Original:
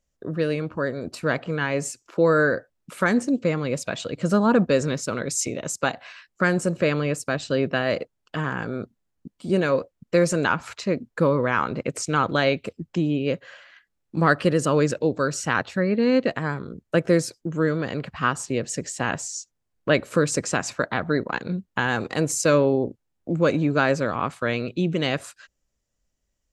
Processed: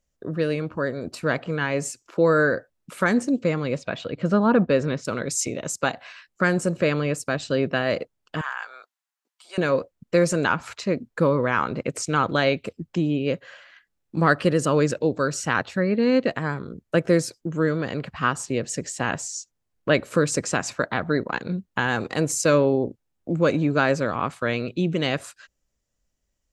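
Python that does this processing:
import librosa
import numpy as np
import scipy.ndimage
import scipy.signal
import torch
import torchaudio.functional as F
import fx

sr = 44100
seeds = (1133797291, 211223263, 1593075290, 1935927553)

y = fx.lowpass(x, sr, hz=3500.0, slope=12, at=(3.77, 5.05))
y = fx.highpass(y, sr, hz=880.0, slope=24, at=(8.41, 9.58))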